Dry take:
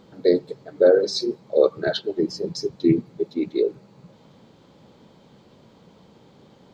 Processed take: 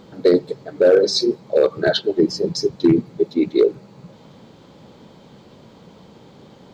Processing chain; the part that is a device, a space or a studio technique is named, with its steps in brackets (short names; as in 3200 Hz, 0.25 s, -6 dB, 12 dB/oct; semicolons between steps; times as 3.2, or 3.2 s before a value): limiter into clipper (limiter -11 dBFS, peak gain reduction 6 dB; hard clip -13 dBFS, distortion -26 dB); gain +6.5 dB